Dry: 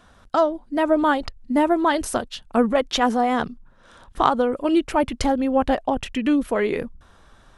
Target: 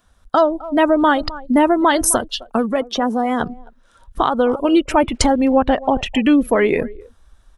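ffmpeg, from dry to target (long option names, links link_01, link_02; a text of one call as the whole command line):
ffmpeg -i in.wav -filter_complex "[0:a]asettb=1/sr,asplit=3[link_01][link_02][link_03];[link_01]atrim=end=2.434[link_04];[link_02]atrim=start=2.43:end=3.41,asetpts=PTS-STARTPTS,afade=type=in:duration=0.004:curve=qsin,afade=type=out:start_time=0.976:duration=0.004:curve=qsin,acrossover=split=100|410|1400|5300[link_05][link_06][link_07][link_08][link_09];[link_05]acompressor=threshold=-54dB:ratio=4[link_10];[link_06]acompressor=threshold=-27dB:ratio=4[link_11];[link_07]acompressor=threshold=-29dB:ratio=4[link_12];[link_08]acompressor=threshold=-40dB:ratio=4[link_13];[link_09]acompressor=threshold=-45dB:ratio=4[link_14];[link_10][link_11][link_12][link_13][link_14]amix=inputs=5:normalize=0[link_15];[link_03]atrim=start=3.406[link_16];[link_04][link_15]acrossfade=duration=0.004:curve1=hsin:curve2=qsin[link_17];[link_17][link_16]acrossfade=duration=0.004:curve1=qsin:curve2=hsin,asettb=1/sr,asplit=3[link_18][link_19][link_20];[link_18]atrim=end=5.584[link_21];[link_19]atrim=start=5.58:end=6.06,asetpts=PTS-STARTPTS,afade=type=in:duration=0.004:curve=qsin,afade=type=out:start_time=0.476:duration=0.004:curve=qsin,lowpass=7100[link_22];[link_20]atrim=start=6.056[link_23];[link_21][link_22]acrossfade=duration=0.004:curve1=hsin:curve2=qsin[link_24];[link_24][link_23]acrossfade=duration=0.004:curve1=qsin:curve2=hsin,asplit=2[link_25][link_26];[link_26]adelay=260,highpass=300,lowpass=3400,asoftclip=type=hard:threshold=-11dB,volume=-19dB[link_27];[link_25][link_27]amix=inputs=2:normalize=0,afftdn=noise_reduction=17:noise_floor=-37,alimiter=limit=-12.5dB:level=0:latency=1:release=180,aemphasis=mode=production:type=50kf,volume=7dB" out.wav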